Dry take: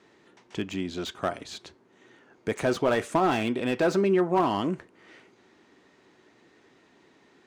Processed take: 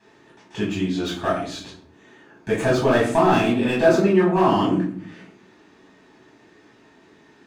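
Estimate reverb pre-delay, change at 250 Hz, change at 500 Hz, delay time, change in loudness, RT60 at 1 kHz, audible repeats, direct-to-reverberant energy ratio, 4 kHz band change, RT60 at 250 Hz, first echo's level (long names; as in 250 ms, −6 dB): 5 ms, +7.5 dB, +6.5 dB, no echo audible, +7.0 dB, 0.50 s, no echo audible, −5.5 dB, +5.5 dB, 0.95 s, no echo audible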